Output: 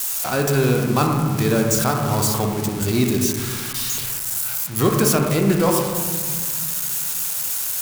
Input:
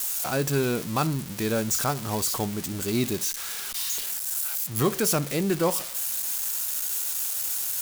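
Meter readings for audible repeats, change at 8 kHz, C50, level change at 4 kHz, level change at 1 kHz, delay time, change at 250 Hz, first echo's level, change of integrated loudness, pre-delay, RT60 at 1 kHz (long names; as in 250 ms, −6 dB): no echo audible, +4.5 dB, 3.0 dB, +4.5 dB, +7.5 dB, no echo audible, +8.0 dB, no echo audible, +6.0 dB, 20 ms, 1.7 s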